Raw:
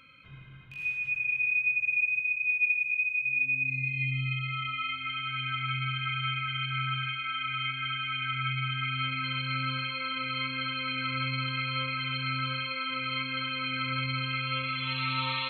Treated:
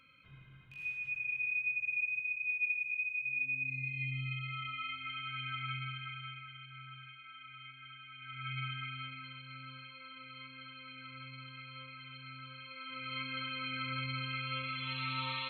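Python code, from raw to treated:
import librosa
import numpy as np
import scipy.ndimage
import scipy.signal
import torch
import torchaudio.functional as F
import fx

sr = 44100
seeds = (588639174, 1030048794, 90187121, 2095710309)

y = fx.gain(x, sr, db=fx.line((5.71, -7.5), (6.64, -19.0), (8.16, -19.0), (8.59, -7.0), (9.4, -17.5), (12.54, -17.5), (13.23, -7.0)))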